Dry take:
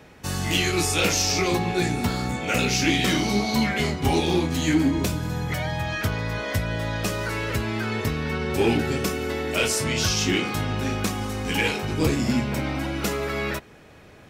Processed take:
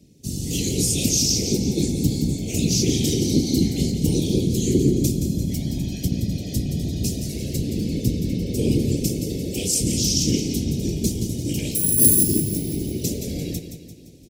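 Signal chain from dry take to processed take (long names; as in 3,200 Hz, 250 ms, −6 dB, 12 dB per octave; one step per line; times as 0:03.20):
0:11.75–0:12.23: bad sample-rate conversion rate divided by 4×, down none, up zero stuff
Chebyshev band-stop filter 240–5,700 Hz, order 2
parametric band 1,400 Hz −7 dB 0.25 octaves
random phases in short frames
high-pass filter 46 Hz
repeating echo 172 ms, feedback 49%, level −9 dB
automatic gain control gain up to 5 dB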